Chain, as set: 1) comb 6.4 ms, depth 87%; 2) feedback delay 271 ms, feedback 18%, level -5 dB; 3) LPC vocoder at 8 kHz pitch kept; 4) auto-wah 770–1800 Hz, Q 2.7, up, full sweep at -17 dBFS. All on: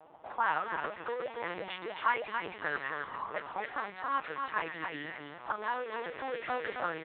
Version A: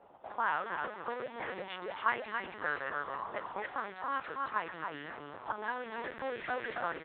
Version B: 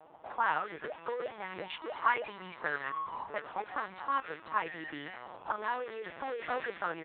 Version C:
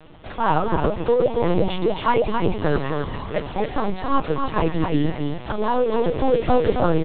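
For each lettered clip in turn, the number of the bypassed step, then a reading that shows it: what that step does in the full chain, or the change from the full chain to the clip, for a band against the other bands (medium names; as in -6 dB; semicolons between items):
1, loudness change -1.5 LU; 2, momentary loudness spread change +3 LU; 4, 125 Hz band +19.0 dB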